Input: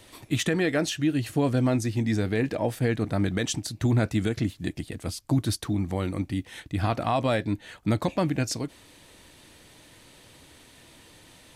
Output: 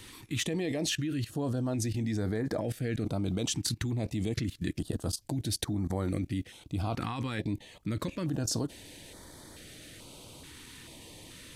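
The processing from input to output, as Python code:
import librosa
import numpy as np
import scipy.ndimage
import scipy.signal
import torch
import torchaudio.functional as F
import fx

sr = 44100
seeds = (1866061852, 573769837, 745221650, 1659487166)

y = fx.level_steps(x, sr, step_db=18)
y = fx.filter_held_notch(y, sr, hz=2.3, low_hz=630.0, high_hz=2700.0)
y = y * 10.0 ** (5.5 / 20.0)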